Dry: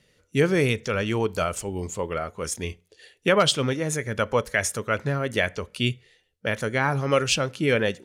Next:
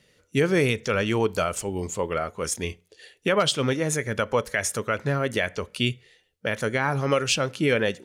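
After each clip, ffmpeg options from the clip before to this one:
-af "lowshelf=f=93:g=-5.5,alimiter=limit=-13.5dB:level=0:latency=1:release=174,volume=2dB"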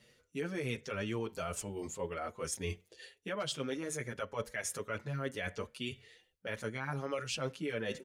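-filter_complex "[0:a]areverse,acompressor=threshold=-33dB:ratio=5,areverse,asplit=2[a][b];[b]adelay=6.5,afreqshift=1.8[c];[a][c]amix=inputs=2:normalize=1"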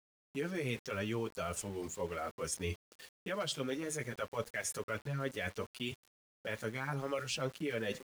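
-af "aeval=exprs='val(0)*gte(abs(val(0)),0.00335)':c=same"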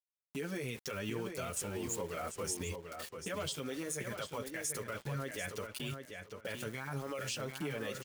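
-filter_complex "[0:a]alimiter=level_in=11dB:limit=-24dB:level=0:latency=1:release=139,volume=-11dB,crystalizer=i=1:c=0,asplit=2[a][b];[b]adelay=742,lowpass=f=5k:p=1,volume=-6dB,asplit=2[c][d];[d]adelay=742,lowpass=f=5k:p=1,volume=0.21,asplit=2[e][f];[f]adelay=742,lowpass=f=5k:p=1,volume=0.21[g];[c][e][g]amix=inputs=3:normalize=0[h];[a][h]amix=inputs=2:normalize=0,volume=4dB"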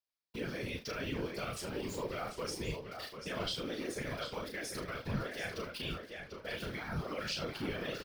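-af "highshelf=f=5.9k:t=q:w=3:g=-6.5,aecho=1:1:35|76:0.631|0.224,afftfilt=real='hypot(re,im)*cos(2*PI*random(0))':imag='hypot(re,im)*sin(2*PI*random(1))':win_size=512:overlap=0.75,volume=5dB"

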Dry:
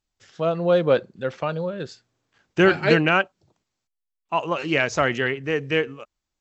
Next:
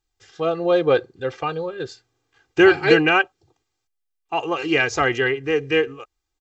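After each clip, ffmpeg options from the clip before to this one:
-af "aecho=1:1:2.5:0.86"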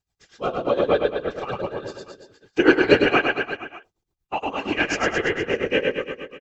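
-filter_complex "[0:a]afftfilt=real='hypot(re,im)*cos(2*PI*random(0))':imag='hypot(re,im)*sin(2*PI*random(1))':win_size=512:overlap=0.75,asplit=2[a][b];[b]aecho=0:1:100|210|331|464.1|610.5:0.631|0.398|0.251|0.158|0.1[c];[a][c]amix=inputs=2:normalize=0,tremolo=f=8.5:d=0.83,volume=5.5dB"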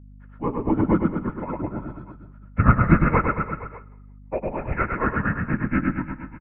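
-filter_complex "[0:a]highpass=f=200:t=q:w=0.5412,highpass=f=200:t=q:w=1.307,lowpass=f=2.1k:t=q:w=0.5176,lowpass=f=2.1k:t=q:w=0.7071,lowpass=f=2.1k:t=q:w=1.932,afreqshift=-250,aeval=exprs='val(0)+0.00631*(sin(2*PI*50*n/s)+sin(2*PI*2*50*n/s)/2+sin(2*PI*3*50*n/s)/3+sin(2*PI*4*50*n/s)/4+sin(2*PI*5*50*n/s)/5)':c=same,asplit=4[a][b][c][d];[b]adelay=170,afreqshift=-30,volume=-20dB[e];[c]adelay=340,afreqshift=-60,volume=-29.4dB[f];[d]adelay=510,afreqshift=-90,volume=-38.7dB[g];[a][e][f][g]amix=inputs=4:normalize=0"

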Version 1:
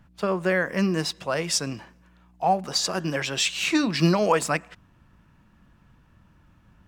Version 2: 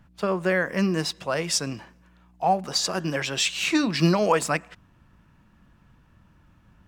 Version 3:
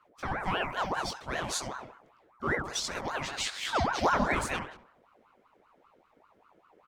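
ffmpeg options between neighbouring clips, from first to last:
-af anull
-filter_complex "[0:a]flanger=delay=17.5:depth=6.1:speed=0.36,asplit=2[a][b];[b]adelay=69,lowpass=f=900:p=1,volume=-3.5dB,asplit=2[c][d];[d]adelay=69,lowpass=f=900:p=1,volume=0.53,asplit=2[e][f];[f]adelay=69,lowpass=f=900:p=1,volume=0.53,asplit=2[g][h];[h]adelay=69,lowpass=f=900:p=1,volume=0.53,asplit=2[i][j];[j]adelay=69,lowpass=f=900:p=1,volume=0.53,asplit=2[k][l];[l]adelay=69,lowpass=f=900:p=1,volume=0.53,asplit=2[m][n];[n]adelay=69,lowpass=f=900:p=1,volume=0.53[o];[a][c][e][g][i][k][m][o]amix=inputs=8:normalize=0,aeval=exprs='val(0)*sin(2*PI*820*n/s+820*0.55/5.1*sin(2*PI*5.1*n/s))':c=same,volume=-3dB"

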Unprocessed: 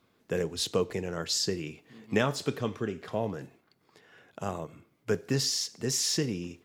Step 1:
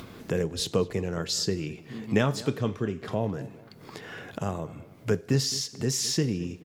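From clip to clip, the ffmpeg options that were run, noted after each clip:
-filter_complex "[0:a]lowshelf=f=230:g=8,acompressor=mode=upward:threshold=-27dB:ratio=2.5,asplit=2[a][b];[b]adelay=213,lowpass=f=2.1k:p=1,volume=-18dB,asplit=2[c][d];[d]adelay=213,lowpass=f=2.1k:p=1,volume=0.41,asplit=2[e][f];[f]adelay=213,lowpass=f=2.1k:p=1,volume=0.41[g];[a][c][e][g]amix=inputs=4:normalize=0"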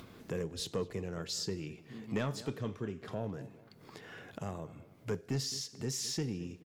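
-af "asoftclip=type=tanh:threshold=-16.5dB,volume=-8.5dB"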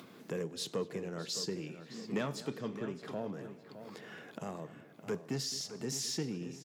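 -filter_complex "[0:a]highpass=f=150:w=0.5412,highpass=f=150:w=1.3066,asplit=2[a][b];[b]adelay=614,lowpass=f=3.4k:p=1,volume=-11dB,asplit=2[c][d];[d]adelay=614,lowpass=f=3.4k:p=1,volume=0.41,asplit=2[e][f];[f]adelay=614,lowpass=f=3.4k:p=1,volume=0.41,asplit=2[g][h];[h]adelay=614,lowpass=f=3.4k:p=1,volume=0.41[i];[a][c][e][g][i]amix=inputs=5:normalize=0"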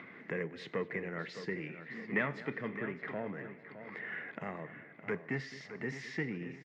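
-af "lowpass=f=2k:t=q:w=9.4,volume=-1dB"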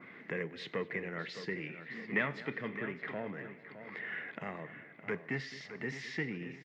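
-af "adynamicequalizer=threshold=0.00112:dfrequency=3500:dqfactor=1:tfrequency=3500:tqfactor=1:attack=5:release=100:ratio=0.375:range=3:mode=boostabove:tftype=bell,volume=-1dB"

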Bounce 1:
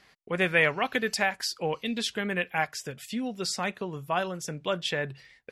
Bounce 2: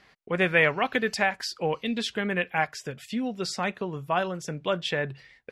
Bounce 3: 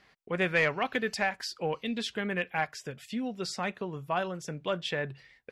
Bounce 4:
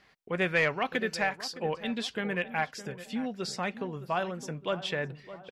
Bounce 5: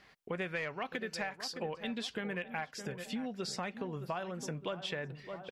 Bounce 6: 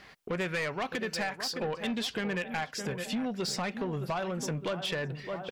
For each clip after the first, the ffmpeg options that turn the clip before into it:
-af "lowpass=f=3.7k:p=1,volume=2.5dB"
-af "asoftclip=type=tanh:threshold=-10dB,volume=-4dB"
-filter_complex "[0:a]asplit=2[a][b];[b]adelay=613,lowpass=f=1.3k:p=1,volume=-13dB,asplit=2[c][d];[d]adelay=613,lowpass=f=1.3k:p=1,volume=0.5,asplit=2[e][f];[f]adelay=613,lowpass=f=1.3k:p=1,volume=0.5,asplit=2[g][h];[h]adelay=613,lowpass=f=1.3k:p=1,volume=0.5,asplit=2[i][j];[j]adelay=613,lowpass=f=1.3k:p=1,volume=0.5[k];[a][c][e][g][i][k]amix=inputs=6:normalize=0"
-af "acompressor=threshold=-36dB:ratio=6,volume=1dB"
-af "asoftclip=type=tanh:threshold=-35dB,volume=8.5dB"

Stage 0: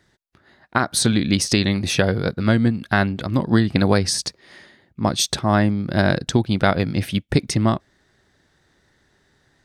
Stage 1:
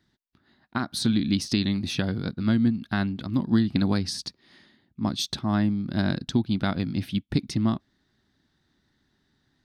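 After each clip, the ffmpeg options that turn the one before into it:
-af "equalizer=f=250:t=o:w=1:g=8,equalizer=f=500:t=o:w=1:g=-9,equalizer=f=2k:t=o:w=1:g=-4,equalizer=f=4k:t=o:w=1:g=5,equalizer=f=8k:t=o:w=1:g=-8,volume=-8.5dB"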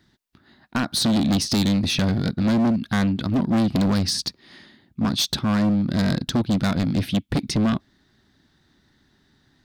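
-af "acontrast=88,volume=18dB,asoftclip=hard,volume=-18dB,volume=1dB"

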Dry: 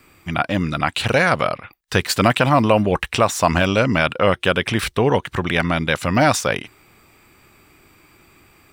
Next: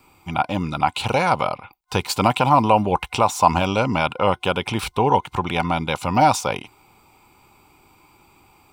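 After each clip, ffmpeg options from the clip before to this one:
-af "superequalizer=9b=3.16:11b=0.316,volume=-3.5dB"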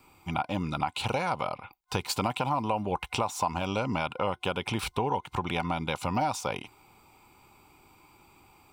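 -af "acompressor=threshold=-22dB:ratio=4,volume=-4dB"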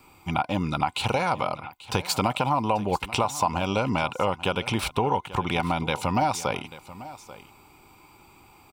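-af "aecho=1:1:838:0.141,volume=4.5dB"

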